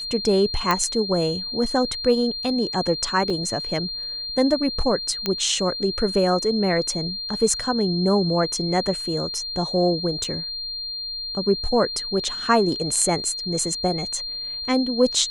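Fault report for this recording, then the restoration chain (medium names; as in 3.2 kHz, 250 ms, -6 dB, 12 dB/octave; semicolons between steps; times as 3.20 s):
whine 4.2 kHz -28 dBFS
0.71 s: pop -6 dBFS
3.30 s: dropout 3.1 ms
5.26 s: pop -9 dBFS
10.24 s: dropout 3.2 ms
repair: de-click; band-stop 4.2 kHz, Q 30; interpolate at 3.30 s, 3.1 ms; interpolate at 10.24 s, 3.2 ms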